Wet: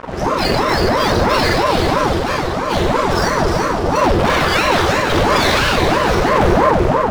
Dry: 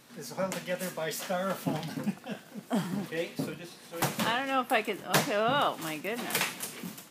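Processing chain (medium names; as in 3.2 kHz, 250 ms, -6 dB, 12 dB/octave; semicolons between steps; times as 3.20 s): spectrum inverted on a logarithmic axis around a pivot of 1.6 kHz; low-pass 6.1 kHz 24 dB/octave; treble shelf 2.9 kHz -12 dB; in parallel at +2 dB: compression, threshold -44 dBFS, peak gain reduction 22.5 dB; on the sum: waveshaping leveller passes 5; Schroeder reverb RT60 0.94 s, combs from 29 ms, DRR -2 dB; saturation -10.5 dBFS, distortion -13 dB; on a send: echo whose repeats swap between lows and highs 189 ms, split 1.2 kHz, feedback 53%, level -2.5 dB; on the sum: ring modulator with a swept carrier 480 Hz, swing 75%, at 3 Hz; trim +3 dB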